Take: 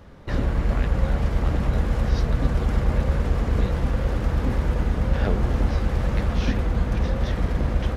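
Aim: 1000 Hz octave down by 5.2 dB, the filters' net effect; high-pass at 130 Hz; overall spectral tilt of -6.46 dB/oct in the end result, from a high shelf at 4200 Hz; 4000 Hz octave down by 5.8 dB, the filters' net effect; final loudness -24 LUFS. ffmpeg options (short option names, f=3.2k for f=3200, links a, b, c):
-af "highpass=130,equalizer=f=1k:t=o:g=-6.5,equalizer=f=4k:t=o:g=-4.5,highshelf=f=4.2k:g=-5,volume=6.5dB"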